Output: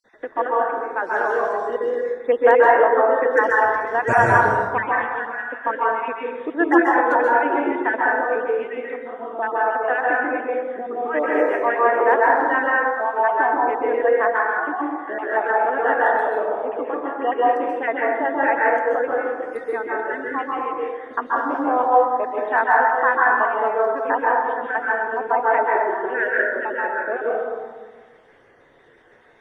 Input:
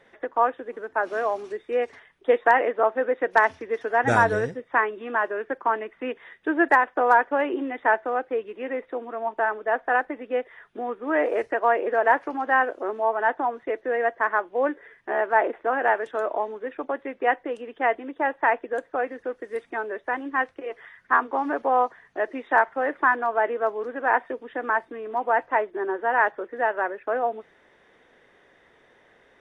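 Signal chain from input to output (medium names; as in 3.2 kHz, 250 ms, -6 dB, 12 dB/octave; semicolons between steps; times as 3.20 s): random holes in the spectrogram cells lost 38%; plate-style reverb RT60 1.4 s, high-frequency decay 0.3×, pre-delay 120 ms, DRR -4.5 dB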